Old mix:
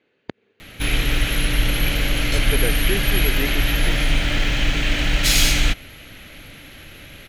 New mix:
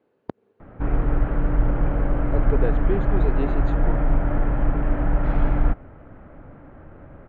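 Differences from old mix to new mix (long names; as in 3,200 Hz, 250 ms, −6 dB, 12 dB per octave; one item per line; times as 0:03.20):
background: add low-pass filter 1,800 Hz 24 dB per octave
master: add high shelf with overshoot 1,500 Hz −13 dB, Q 1.5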